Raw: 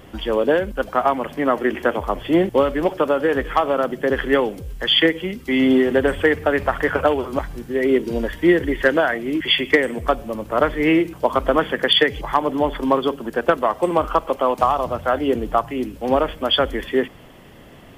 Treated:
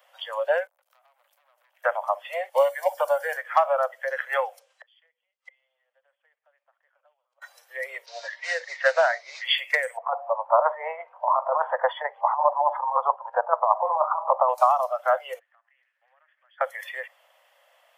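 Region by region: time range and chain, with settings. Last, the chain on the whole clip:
0.67–1.84 pre-emphasis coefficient 0.8 + compressor 20:1, threshold -43 dBFS + core saturation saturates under 2500 Hz
2.56–3.37 high shelf 4000 Hz +8.5 dB + notch comb 1300 Hz
4.59–7.42 LPF 8200 Hz 24 dB/oct + high shelf 5000 Hz -3.5 dB + flipped gate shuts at -22 dBFS, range -34 dB
8.06–9.44 modulation noise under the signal 14 dB + LPF 5200 Hz 24 dB/oct
9.97–14.49 synth low-pass 960 Hz, resonance Q 3.1 + negative-ratio compressor -15 dBFS, ratio -0.5
15.39–16.61 band-pass 1800 Hz, Q 7.5 + compressor 3:1, threshold -51 dBFS
whole clip: spectral noise reduction 12 dB; steep high-pass 530 Hz 96 dB/oct; dynamic EQ 2900 Hz, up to -6 dB, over -36 dBFS, Q 0.74

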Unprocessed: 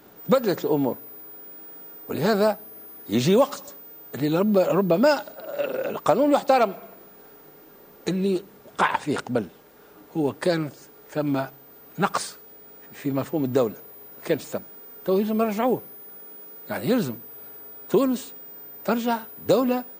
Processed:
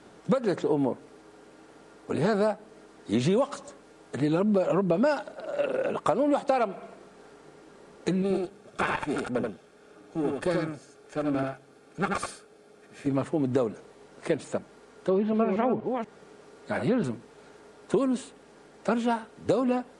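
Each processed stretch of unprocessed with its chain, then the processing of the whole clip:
8.22–13.07 half-wave gain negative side -12 dB + notch comb 980 Hz + echo 82 ms -3.5 dB
14.84–17.04 reverse delay 0.241 s, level -7.5 dB + treble ducked by the level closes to 2900 Hz, closed at -19.5 dBFS
whole clip: compressor 4:1, threshold -21 dBFS; steep low-pass 11000 Hz 96 dB/oct; dynamic EQ 5300 Hz, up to -7 dB, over -52 dBFS, Q 1

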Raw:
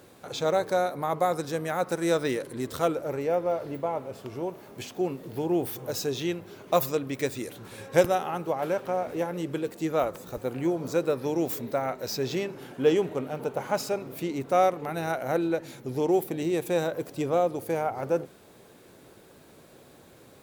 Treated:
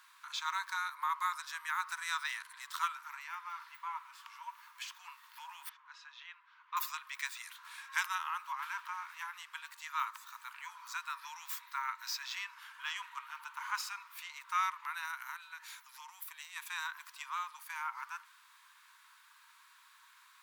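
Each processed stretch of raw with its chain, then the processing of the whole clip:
5.69–6.77 HPF 960 Hz 6 dB/oct + tape spacing loss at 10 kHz 37 dB
15.05–16.56 high shelf 6900 Hz +7.5 dB + compressor 2.5:1, threshold -32 dBFS
whole clip: Chebyshev high-pass 940 Hz, order 8; high shelf 3900 Hz -8.5 dB; gain +1.5 dB

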